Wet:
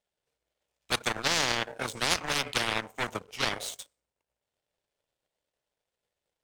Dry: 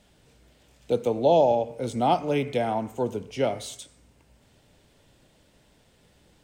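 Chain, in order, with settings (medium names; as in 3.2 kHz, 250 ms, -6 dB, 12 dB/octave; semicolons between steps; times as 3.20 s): resonant low shelf 360 Hz -9 dB, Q 1.5; power-law waveshaper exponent 2; spectrum-flattening compressor 10:1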